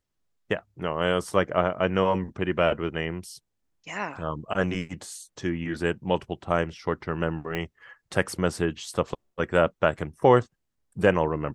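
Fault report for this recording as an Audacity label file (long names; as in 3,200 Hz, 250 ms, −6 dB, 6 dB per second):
7.550000	7.550000	click −16 dBFS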